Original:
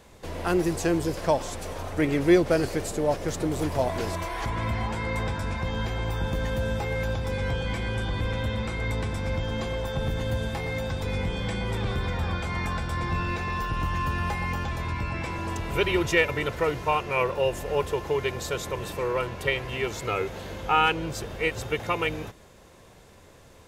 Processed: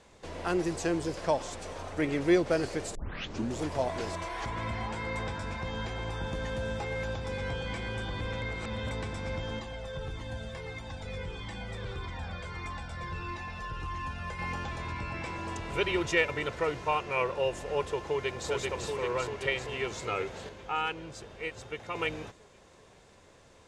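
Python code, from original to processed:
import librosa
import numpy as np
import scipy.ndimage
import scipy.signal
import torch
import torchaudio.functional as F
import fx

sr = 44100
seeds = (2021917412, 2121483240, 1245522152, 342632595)

y = fx.comb_cascade(x, sr, direction='falling', hz=1.6, at=(9.59, 14.39))
y = fx.echo_throw(y, sr, start_s=18.04, length_s=0.45, ms=390, feedback_pct=70, wet_db=-2.0)
y = fx.edit(y, sr, fx.tape_start(start_s=2.95, length_s=0.67),
    fx.reverse_span(start_s=8.42, length_s=0.49),
    fx.clip_gain(start_s=20.49, length_s=1.46, db=-6.0), tone=tone)
y = scipy.signal.sosfilt(scipy.signal.butter(4, 9000.0, 'lowpass', fs=sr, output='sos'), y)
y = fx.low_shelf(y, sr, hz=210.0, db=-5.0)
y = F.gain(torch.from_numpy(y), -4.0).numpy()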